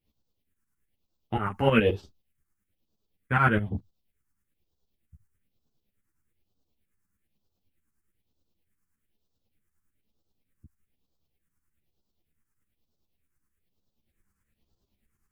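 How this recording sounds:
phaser sweep stages 4, 1.1 Hz, lowest notch 590–2,000 Hz
tremolo saw up 9.5 Hz, depth 75%
a shimmering, thickened sound

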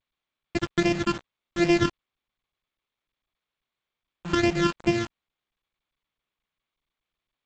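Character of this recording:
a buzz of ramps at a fixed pitch in blocks of 128 samples
phaser sweep stages 12, 2.5 Hz, lowest notch 650–1,300 Hz
a quantiser's noise floor 6 bits, dither none
G.722

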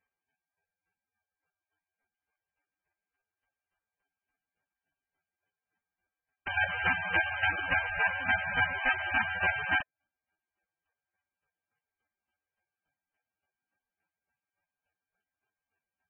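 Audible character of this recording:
a buzz of ramps at a fixed pitch in blocks of 8 samples
chopped level 3.5 Hz, depth 65%, duty 25%
aliases and images of a low sample rate 7,100 Hz, jitter 0%
MP3

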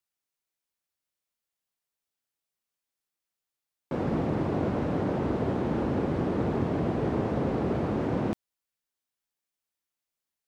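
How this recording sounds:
background noise floor −89 dBFS
spectral slope −6.5 dB per octave

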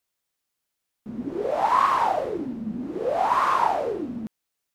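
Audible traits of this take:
background noise floor −81 dBFS
spectral slope −3.5 dB per octave

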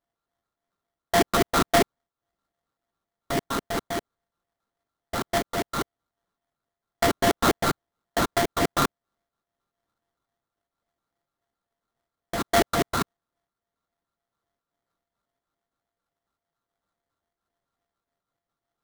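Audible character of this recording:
a buzz of ramps at a fixed pitch in blocks of 64 samples
phaser sweep stages 12, 3.6 Hz, lowest notch 620–2,100 Hz
aliases and images of a low sample rate 2,600 Hz, jitter 20%
amplitude modulation by smooth noise

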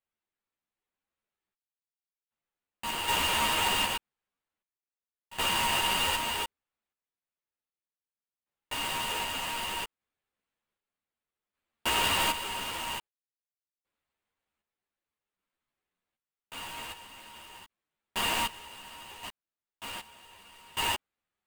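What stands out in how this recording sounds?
aliases and images of a low sample rate 5,700 Hz, jitter 20%
sample-and-hold tremolo 1.3 Hz, depth 100%
a shimmering, thickened sound

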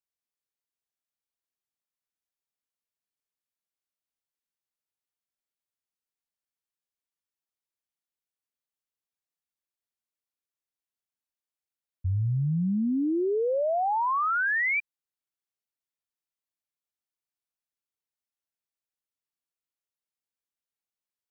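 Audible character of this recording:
background noise floor −94 dBFS
spectral slope −3.0 dB per octave

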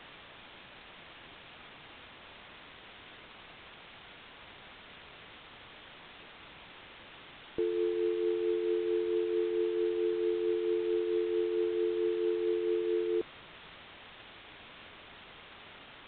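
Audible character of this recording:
a buzz of ramps at a fixed pitch in blocks of 8 samples
tremolo triangle 4.5 Hz, depth 45%
a quantiser's noise floor 8 bits, dither triangular
IMA ADPCM

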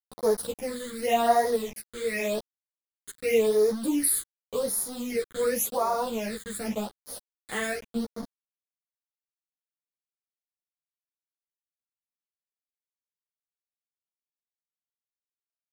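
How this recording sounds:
a quantiser's noise floor 6 bits, dither none
phaser sweep stages 8, 0.89 Hz, lowest notch 760–2,700 Hz
tremolo triangle 0.97 Hz, depth 35%
a shimmering, thickened sound

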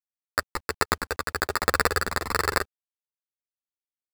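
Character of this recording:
aliases and images of a low sample rate 3,100 Hz, jitter 0%
sample-and-hold tremolo
a quantiser's noise floor 10 bits, dither none
a shimmering, thickened sound

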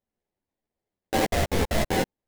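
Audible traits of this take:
aliases and images of a low sample rate 1,300 Hz, jitter 20%
a shimmering, thickened sound

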